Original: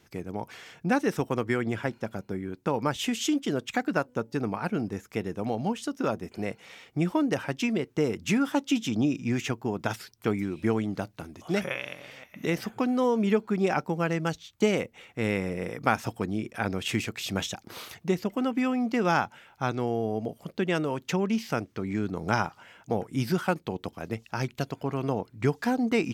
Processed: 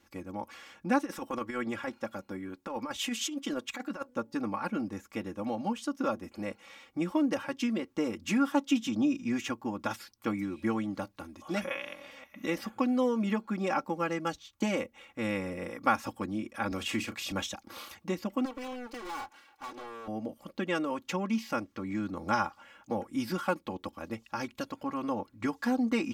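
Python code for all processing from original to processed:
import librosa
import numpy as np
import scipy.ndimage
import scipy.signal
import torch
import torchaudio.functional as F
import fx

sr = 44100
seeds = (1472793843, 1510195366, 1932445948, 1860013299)

y = fx.chain(x, sr, fx.low_shelf(hz=300.0, db=-6.0),
    fx.over_compress(threshold_db=-30.0, ratio=-0.5), at=(0.98, 4.09))
y = fx.chain(y, sr, fx.doubler(ms=35.0, db=-11.5),
    fx.band_squash(depth_pct=40), at=(16.71, 17.32))
y = fx.chain(y, sr, fx.lower_of_two(delay_ms=2.6),
    fx.highpass(hz=270.0, slope=6),
    fx.overload_stage(gain_db=35.0), at=(18.45, 20.08))
y = fx.peak_eq(y, sr, hz=1100.0, db=6.0, octaves=0.48)
y = y + 0.86 * np.pad(y, (int(3.6 * sr / 1000.0), 0))[:len(y)]
y = y * librosa.db_to_amplitude(-6.5)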